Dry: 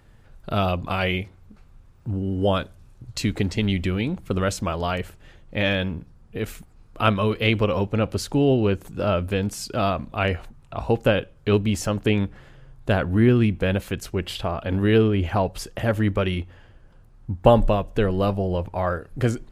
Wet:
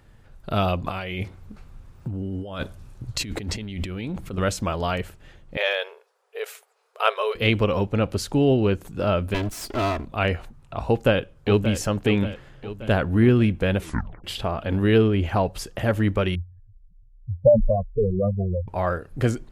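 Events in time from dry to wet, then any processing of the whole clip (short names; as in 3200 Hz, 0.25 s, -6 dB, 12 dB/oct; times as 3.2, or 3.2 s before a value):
0.85–4.38 negative-ratio compressor -30 dBFS
5.57–7.35 brick-wall FIR high-pass 390 Hz
9.34–10.05 minimum comb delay 3 ms
10.88–11.75 echo throw 0.58 s, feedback 55%, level -10.5 dB
13.78 tape stop 0.46 s
16.35–18.68 spectral contrast raised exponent 3.9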